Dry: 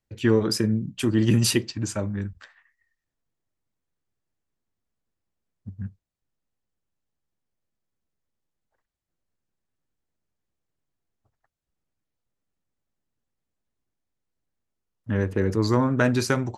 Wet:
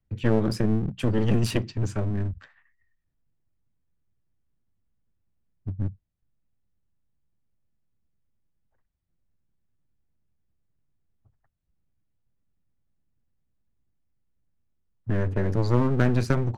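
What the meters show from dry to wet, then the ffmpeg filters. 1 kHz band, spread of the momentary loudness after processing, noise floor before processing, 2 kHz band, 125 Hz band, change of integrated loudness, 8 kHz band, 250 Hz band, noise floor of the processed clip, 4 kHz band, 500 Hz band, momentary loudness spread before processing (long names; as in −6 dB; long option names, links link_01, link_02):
−2.5 dB, 11 LU, −84 dBFS, −5.0 dB, +1.0 dB, −2.5 dB, below −10 dB, −2.5 dB, −75 dBFS, can't be measured, −2.5 dB, 16 LU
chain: -filter_complex "[0:a]acrossover=split=200|3000[link_01][link_02][link_03];[link_01]acompressor=threshold=-27dB:ratio=6[link_04];[link_04][link_02][link_03]amix=inputs=3:normalize=0,bass=frequency=250:gain=13,treble=frequency=4000:gain=-9,aeval=exprs='clip(val(0),-1,0.0473)':channel_layout=same,volume=-3dB"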